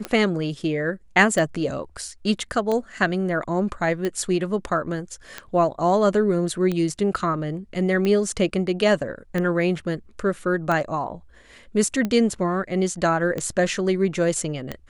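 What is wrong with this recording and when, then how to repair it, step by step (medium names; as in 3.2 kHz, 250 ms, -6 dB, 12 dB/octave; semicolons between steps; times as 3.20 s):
tick 45 rpm -13 dBFS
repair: de-click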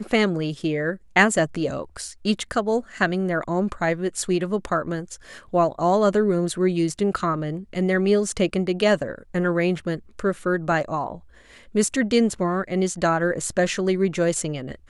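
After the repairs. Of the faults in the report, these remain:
nothing left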